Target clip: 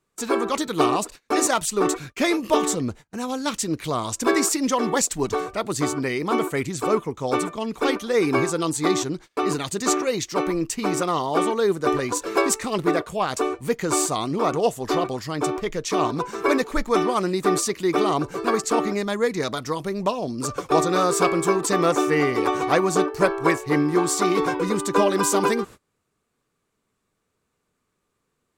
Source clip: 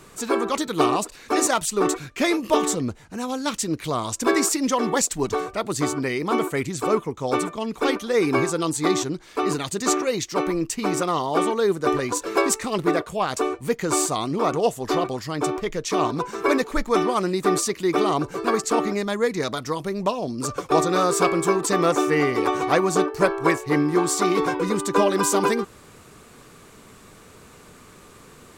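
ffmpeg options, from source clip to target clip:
ffmpeg -i in.wav -af "agate=range=-28dB:threshold=-38dB:ratio=16:detection=peak" out.wav

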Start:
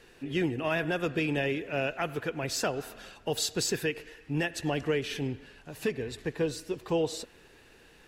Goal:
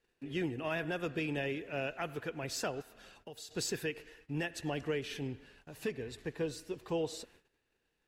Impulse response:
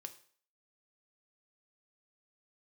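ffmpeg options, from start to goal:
-filter_complex "[0:a]agate=range=-18dB:threshold=-53dB:ratio=16:detection=peak,asplit=3[link_01][link_02][link_03];[link_01]afade=type=out:start_time=2.81:duration=0.02[link_04];[link_02]acompressor=threshold=-45dB:ratio=2.5,afade=type=in:start_time=2.81:duration=0.02,afade=type=out:start_time=3.5:duration=0.02[link_05];[link_03]afade=type=in:start_time=3.5:duration=0.02[link_06];[link_04][link_05][link_06]amix=inputs=3:normalize=0,volume=-6.5dB"

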